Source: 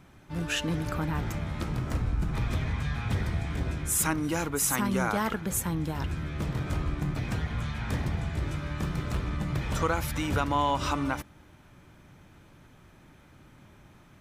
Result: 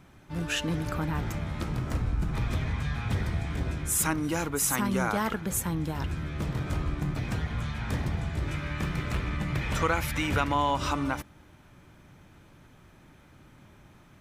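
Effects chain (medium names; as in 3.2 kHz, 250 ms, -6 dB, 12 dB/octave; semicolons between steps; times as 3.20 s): 8.48–10.54 s: peaking EQ 2.2 kHz +6.5 dB 1 oct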